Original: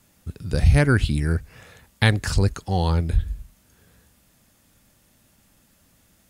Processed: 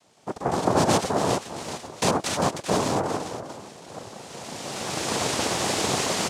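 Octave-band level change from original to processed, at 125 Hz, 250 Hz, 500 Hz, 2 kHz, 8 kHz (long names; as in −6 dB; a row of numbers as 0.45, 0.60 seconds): −11.5, −0.5, +5.0, −3.0, +12.0 decibels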